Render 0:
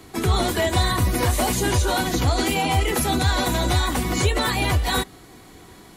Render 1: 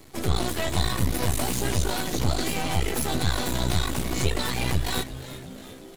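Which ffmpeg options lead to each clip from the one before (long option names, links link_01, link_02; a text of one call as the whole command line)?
ffmpeg -i in.wav -filter_complex "[0:a]equalizer=frequency=1100:width_type=o:width=2.2:gain=-4.5,aeval=exprs='max(val(0),0)':channel_layout=same,asplit=7[link_01][link_02][link_03][link_04][link_05][link_06][link_07];[link_02]adelay=357,afreqshift=-130,volume=-14.5dB[link_08];[link_03]adelay=714,afreqshift=-260,volume=-18.9dB[link_09];[link_04]adelay=1071,afreqshift=-390,volume=-23.4dB[link_10];[link_05]adelay=1428,afreqshift=-520,volume=-27.8dB[link_11];[link_06]adelay=1785,afreqshift=-650,volume=-32.2dB[link_12];[link_07]adelay=2142,afreqshift=-780,volume=-36.7dB[link_13];[link_01][link_08][link_09][link_10][link_11][link_12][link_13]amix=inputs=7:normalize=0" out.wav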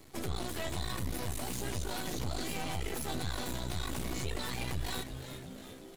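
ffmpeg -i in.wav -af "alimiter=limit=-19dB:level=0:latency=1:release=59,volume=-6dB" out.wav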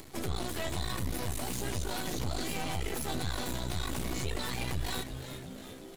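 ffmpeg -i in.wav -af "acompressor=mode=upward:threshold=-45dB:ratio=2.5,volume=2dB" out.wav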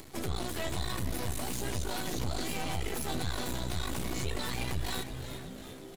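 ffmpeg -i in.wav -filter_complex "[0:a]asplit=2[link_01][link_02];[link_02]adelay=466.5,volume=-14dB,highshelf=frequency=4000:gain=-10.5[link_03];[link_01][link_03]amix=inputs=2:normalize=0" out.wav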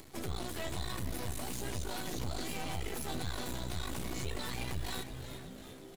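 ffmpeg -i in.wav -af "acrusher=bits=7:mode=log:mix=0:aa=0.000001,volume=-4dB" out.wav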